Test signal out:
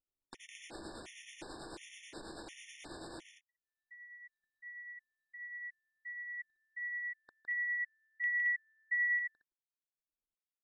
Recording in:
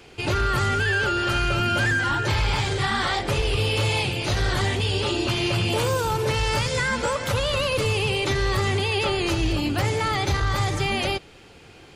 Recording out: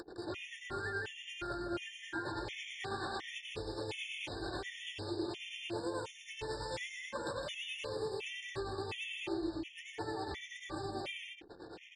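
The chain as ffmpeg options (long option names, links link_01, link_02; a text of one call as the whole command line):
ffmpeg -i in.wav -af "acompressor=mode=upward:threshold=-43dB:ratio=2.5,equalizer=frequency=330:width=5.5:gain=11.5,tremolo=f=9.2:d=0.63,acompressor=threshold=-44dB:ratio=2.5,aecho=1:1:160.3|221.6:0.631|0.631,aresample=22050,aresample=44100,anlmdn=0.00631,bass=frequency=250:gain=-10,treble=frequency=4000:gain=-2,bandreject=frequency=1300:width=6.7,afftfilt=real='re*gt(sin(2*PI*1.4*pts/sr)*(1-2*mod(floor(b*sr/1024/1800),2)),0)':imag='im*gt(sin(2*PI*1.4*pts/sr)*(1-2*mod(floor(b*sr/1024/1800),2)),0)':win_size=1024:overlap=0.75,volume=1dB" out.wav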